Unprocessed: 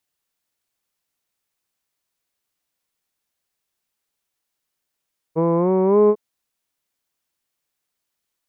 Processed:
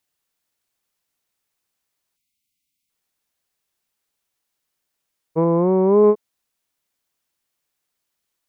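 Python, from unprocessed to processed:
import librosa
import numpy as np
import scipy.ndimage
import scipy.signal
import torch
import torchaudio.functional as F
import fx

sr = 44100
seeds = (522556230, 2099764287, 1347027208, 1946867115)

y = fx.spec_erase(x, sr, start_s=2.17, length_s=0.73, low_hz=320.0, high_hz=2000.0)
y = fx.high_shelf(y, sr, hz=2000.0, db=-10.5, at=(5.44, 6.04))
y = F.gain(torch.from_numpy(y), 1.5).numpy()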